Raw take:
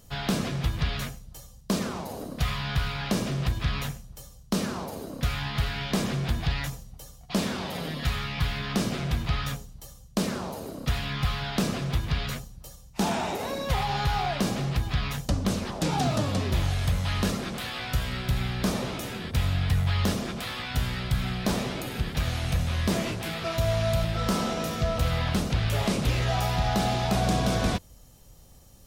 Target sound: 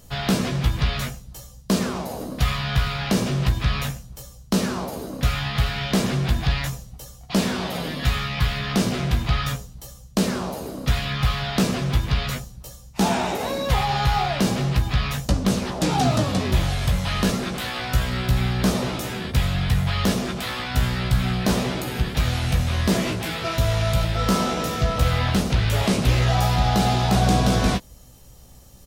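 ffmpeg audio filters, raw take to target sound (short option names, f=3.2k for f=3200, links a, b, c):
-filter_complex "[0:a]asplit=2[a][b];[b]adelay=16,volume=-7dB[c];[a][c]amix=inputs=2:normalize=0,volume=4.5dB"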